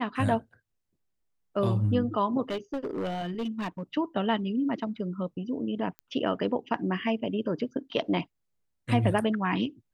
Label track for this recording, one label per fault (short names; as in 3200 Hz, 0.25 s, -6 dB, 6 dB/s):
2.490000	3.940000	clipped -27.5 dBFS
5.990000	5.990000	pop -26 dBFS